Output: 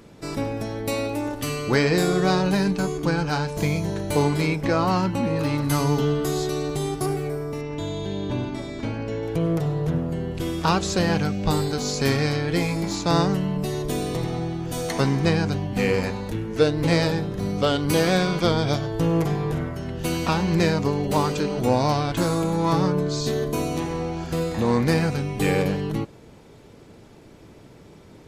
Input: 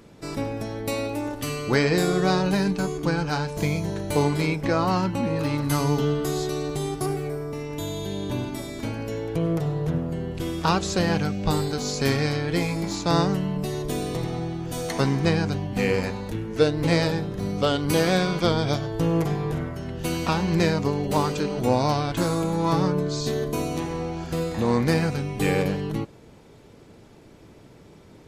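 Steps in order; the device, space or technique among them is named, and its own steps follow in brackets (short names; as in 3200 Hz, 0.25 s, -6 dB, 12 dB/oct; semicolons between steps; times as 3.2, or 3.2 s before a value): parallel distortion (in parallel at -12.5 dB: hard clip -23 dBFS, distortion -9 dB); 7.61–9.23 on the sum: air absorption 100 m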